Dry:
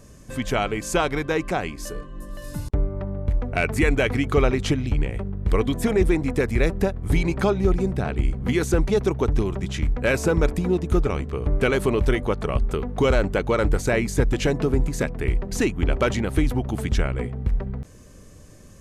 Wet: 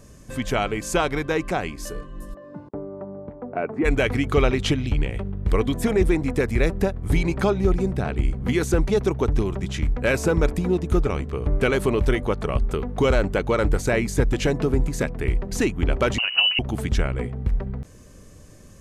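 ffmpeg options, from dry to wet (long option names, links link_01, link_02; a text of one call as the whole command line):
ffmpeg -i in.wav -filter_complex "[0:a]asplit=3[link_01][link_02][link_03];[link_01]afade=type=out:start_time=2.33:duration=0.02[link_04];[link_02]asuperpass=centerf=500:order=4:qfactor=0.55,afade=type=in:start_time=2.33:duration=0.02,afade=type=out:start_time=3.84:duration=0.02[link_05];[link_03]afade=type=in:start_time=3.84:duration=0.02[link_06];[link_04][link_05][link_06]amix=inputs=3:normalize=0,asettb=1/sr,asplit=3[link_07][link_08][link_09];[link_07]atrim=end=4.344[link_10];[link_08]atrim=start=4.34:end=5.41,asetpts=PTS-STARTPTS,afade=type=in:duration=0.004:curve=qsin,afade=type=out:start_time=1.066:duration=0.004:curve=qsin,equalizer=frequency=3200:width_type=o:width=0.87:gain=5[link_11];[link_09]atrim=start=5.406[link_12];[link_10][link_11]acrossfade=duration=0.004:curve1=hsin:curve2=qsin[link_13];[link_13][link_12]acrossfade=duration=0.004:curve1=qsin:curve2=hsin,asettb=1/sr,asplit=3[link_14][link_15][link_16];[link_14]atrim=end=16.184[link_17];[link_15]atrim=start=16.18:end=16.59,asetpts=PTS-STARTPTS,afade=type=in:duration=0.004:curve=qsin,afade=type=out:start_time=0.406:duration=0.004:curve=qsin,lowpass=frequency=2600:width_type=q:width=0.5098,lowpass=frequency=2600:width_type=q:width=0.6013,lowpass=frequency=2600:width_type=q:width=0.9,lowpass=frequency=2600:width_type=q:width=2.563,afreqshift=-3000[link_18];[link_16]atrim=start=16.586[link_19];[link_17][link_18]acrossfade=duration=0.004:curve1=hsin:curve2=qsin[link_20];[link_20][link_19]acrossfade=duration=0.004:curve1=qsin:curve2=hsin" out.wav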